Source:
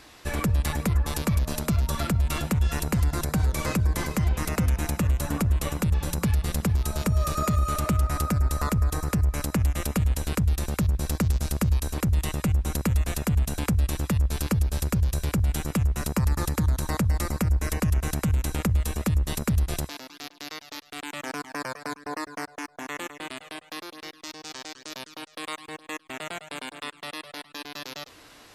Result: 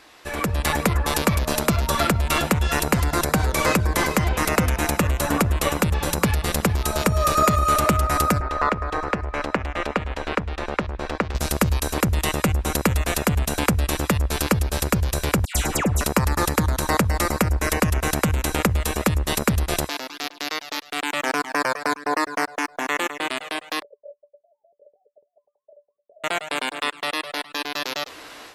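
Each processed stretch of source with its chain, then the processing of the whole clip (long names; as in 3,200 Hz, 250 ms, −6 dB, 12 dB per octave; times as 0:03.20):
0:08.40–0:11.35: low-pass filter 2,600 Hz + parametric band 110 Hz −11.5 dB 2.2 octaves
0:15.45–0:16.01: parametric band 7,200 Hz +6 dB 0.67 octaves + all-pass dispersion lows, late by 103 ms, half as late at 1,900 Hz
0:23.82–0:26.24: three sine waves on the formant tracks + Chebyshev low-pass with heavy ripple 600 Hz, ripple 9 dB
whole clip: bass and treble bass −11 dB, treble −4 dB; automatic gain control gain up to 10 dB; level +1.5 dB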